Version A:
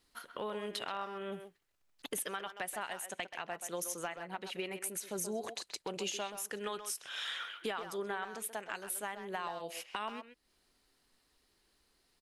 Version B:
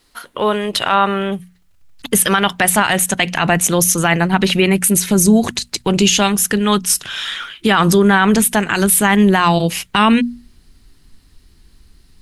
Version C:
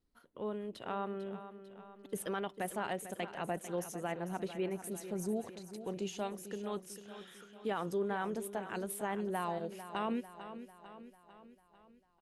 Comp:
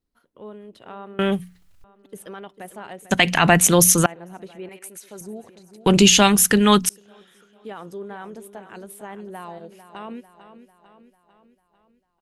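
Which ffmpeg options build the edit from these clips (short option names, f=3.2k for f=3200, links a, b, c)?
-filter_complex "[1:a]asplit=3[a][b][c];[2:a]asplit=5[d][e][f][g][h];[d]atrim=end=1.192[i];[a]atrim=start=1.188:end=1.842[j];[e]atrim=start=1.838:end=3.112[k];[b]atrim=start=3.108:end=4.062[l];[f]atrim=start=4.058:end=4.692[m];[0:a]atrim=start=4.688:end=5.212[n];[g]atrim=start=5.208:end=5.862[o];[c]atrim=start=5.858:end=6.892[p];[h]atrim=start=6.888[q];[i][j]acrossfade=d=0.004:c1=hsin:c2=hsin[r];[r][k]acrossfade=d=0.004:c1=hsin:c2=hsin[s];[s][l]acrossfade=d=0.004:c1=hsin:c2=hsin[t];[t][m]acrossfade=d=0.004:c1=hsin:c2=hsin[u];[u][n]acrossfade=d=0.004:c1=hsin:c2=hsin[v];[v][o]acrossfade=d=0.004:c1=hsin:c2=hsin[w];[w][p]acrossfade=d=0.004:c1=hsin:c2=hsin[x];[x][q]acrossfade=d=0.004:c1=hsin:c2=hsin"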